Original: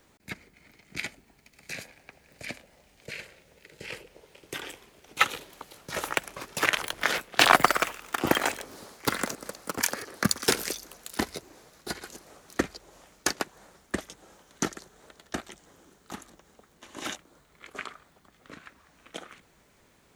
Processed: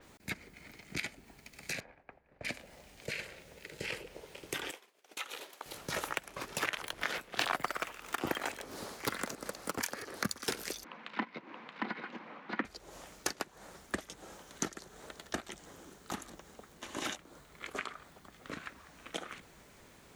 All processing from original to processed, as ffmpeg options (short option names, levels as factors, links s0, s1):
-filter_complex "[0:a]asettb=1/sr,asplit=3[s0][s1][s2];[s0]atrim=end=1.804[s3];[s1]atrim=start=1.8:end=2.45,asetpts=PTS-STARTPTS,afade=t=in:d=0.004:c=qsin,afade=t=out:st=0.646:d=0.004:c=qsin,agate=range=0.0224:threshold=0.002:ratio=3:release=100:detection=peak,lowpass=1200,equalizer=f=170:w=0.35:g=-7[s4];[s2]atrim=start=2.446[s5];[s3][s4]acrossfade=d=0.004:c1=hsin:c2=qsin[s6];[s6][s5]acrossfade=d=0.004:c1=qsin:c2=hsin,asettb=1/sr,asplit=3[s7][s8][s9];[s7]atrim=end=4.714[s10];[s8]atrim=start=4.71:end=5.66,asetpts=PTS-STARTPTS,afade=t=in:d=0.004:c=qsin,afade=t=out:st=0.946:d=0.004:c=qsin,agate=range=0.0224:threshold=0.00447:ratio=3:release=100:detection=peak,highpass=420,acompressor=threshold=0.00794:ratio=4:attack=3.2:release=140:knee=1:detection=peak[s11];[s9]atrim=start=5.656[s12];[s10][s11]acrossfade=d=0.004:c1=hsin:c2=qsin[s13];[s13][s12]acrossfade=d=0.004:c1=qsin:c2=hsin,asettb=1/sr,asplit=3[s14][s15][s16];[s14]atrim=end=10.844[s17];[s15]atrim=start=10.84:end=12.65,asetpts=PTS-STARTPTS,afade=t=in:d=0.004:c=qsin,afade=t=out:st=1.806:d=0.004:c=qsin,highpass=f=180:w=0.5412,highpass=f=180:w=1.3066,equalizer=f=220:t=q:w=4:g=5,equalizer=f=400:t=q:w=4:g=-9,equalizer=f=650:t=q:w=4:g=-6,equalizer=f=1000:t=q:w=4:g=6,equalizer=f=2200:t=q:w=4:g=4,lowpass=f=2900:w=0.5412,lowpass=f=2900:w=1.3066,aecho=1:1:626:0.531,atrim=end_sample=79821[s18];[s16]atrim=start=12.646[s19];[s17][s18]acrossfade=d=0.004:c1=hsin:c2=qsin[s20];[s20][s19]acrossfade=d=0.004:c1=qsin:c2=hsin,acompressor=threshold=0.01:ratio=3,adynamicequalizer=threshold=0.00178:dfrequency=5200:dqfactor=0.7:tfrequency=5200:tqfactor=0.7:attack=5:release=100:ratio=0.375:range=2:mode=cutabove:tftype=highshelf,volume=1.58"